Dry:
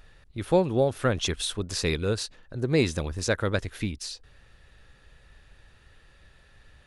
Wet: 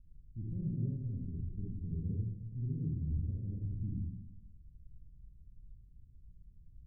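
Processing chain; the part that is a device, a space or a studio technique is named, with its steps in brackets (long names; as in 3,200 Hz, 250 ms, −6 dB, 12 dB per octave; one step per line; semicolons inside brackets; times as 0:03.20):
club heard from the street (brickwall limiter −21.5 dBFS, peak gain reduction 11.5 dB; low-pass filter 200 Hz 24 dB per octave; convolution reverb RT60 0.85 s, pre-delay 48 ms, DRR −3.5 dB)
level −6 dB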